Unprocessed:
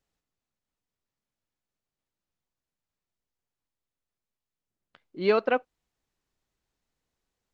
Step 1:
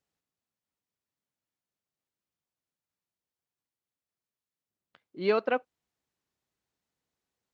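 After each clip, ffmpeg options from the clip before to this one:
-af "highpass=88,volume=0.708"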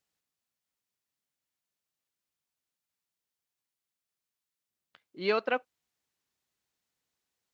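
-af "tiltshelf=f=1200:g=-4"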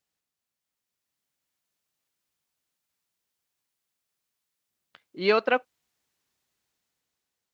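-af "dynaudnorm=f=420:g=5:m=2"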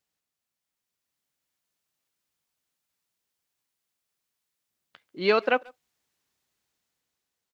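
-filter_complex "[0:a]asplit=2[s0][s1];[s1]adelay=140,highpass=300,lowpass=3400,asoftclip=type=hard:threshold=0.141,volume=0.0631[s2];[s0][s2]amix=inputs=2:normalize=0"

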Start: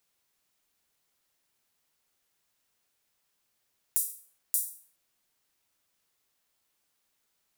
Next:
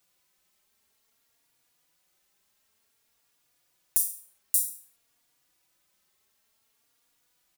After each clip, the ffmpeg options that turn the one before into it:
-filter_complex "[0:a]asplit=2[s0][s1];[s1]adelay=3.6,afreqshift=0.54[s2];[s0][s2]amix=inputs=2:normalize=1,volume=2.37"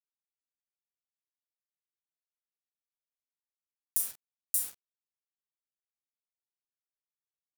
-af "aeval=exprs='val(0)*gte(abs(val(0)),0.0211)':c=same,volume=0.562"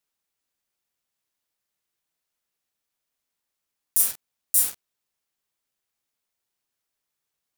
-af "alimiter=level_in=5.01:limit=0.891:release=50:level=0:latency=1,volume=0.891"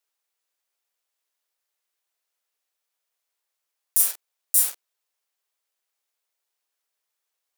-af "highpass=f=410:w=0.5412,highpass=f=410:w=1.3066,volume=1.12"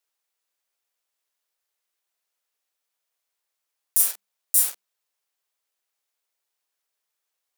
-af "bandreject=f=50:t=h:w=6,bandreject=f=100:t=h:w=6,bandreject=f=150:t=h:w=6,bandreject=f=200:t=h:w=6"

